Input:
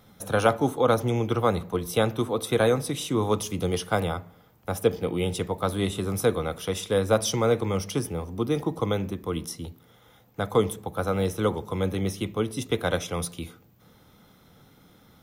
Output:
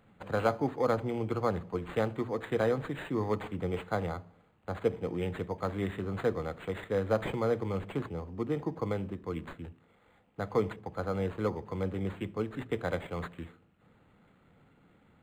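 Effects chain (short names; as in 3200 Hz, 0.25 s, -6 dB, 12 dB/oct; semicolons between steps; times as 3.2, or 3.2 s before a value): notches 60/120 Hz; decimation joined by straight lines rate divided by 8×; gain -6.5 dB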